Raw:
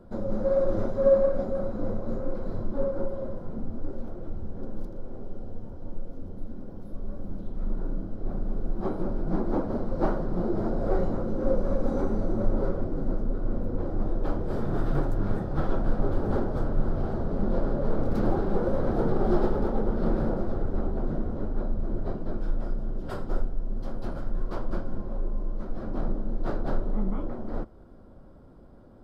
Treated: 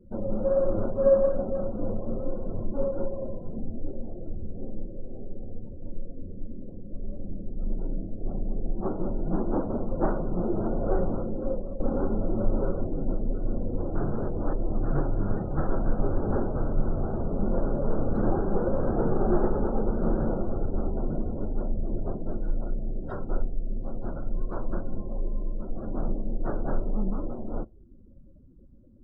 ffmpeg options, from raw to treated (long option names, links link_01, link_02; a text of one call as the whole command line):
ffmpeg -i in.wav -filter_complex "[0:a]asplit=4[link_01][link_02][link_03][link_04];[link_01]atrim=end=11.8,asetpts=PTS-STARTPTS,afade=type=out:start_time=11.12:duration=0.68:silence=0.266073[link_05];[link_02]atrim=start=11.8:end=13.952,asetpts=PTS-STARTPTS,afade=type=in:duration=0.004:curve=hsin:silence=0.266073[link_06];[link_03]atrim=start=13.948:end=14.832,asetpts=PTS-STARTPTS,areverse[link_07];[link_04]atrim=start=14.828[link_08];[link_05][link_06]concat=n=2:v=0:a=1[link_09];[link_09][link_07]acrossfade=duration=0.004:curve1=hsin:curve2=hsin[link_10];[link_10][link_08]acrossfade=duration=0.004:curve1=hsin:curve2=hsin,afftdn=noise_reduction=28:noise_floor=-43" out.wav